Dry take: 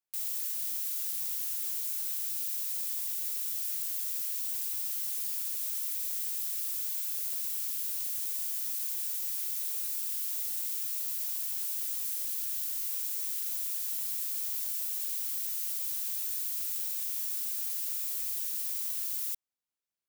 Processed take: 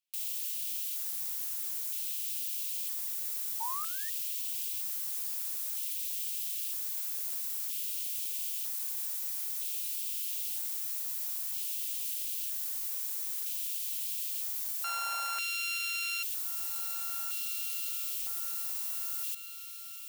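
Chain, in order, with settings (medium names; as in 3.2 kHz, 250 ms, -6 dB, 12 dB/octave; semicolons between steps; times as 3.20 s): 14.84–16.23 s: sorted samples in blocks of 32 samples; on a send: echo that smears into a reverb 1823 ms, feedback 54%, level -12 dB; 3.60–4.10 s: on the sum: painted sound rise 880–1900 Hz -41 dBFS; in parallel at -1 dB: peak limiter -29.5 dBFS, peak gain reduction 9.5 dB; on the sum: LFO high-pass square 0.52 Hz 770–2800 Hz; hum notches 60/120/180 Hz; trim -5.5 dB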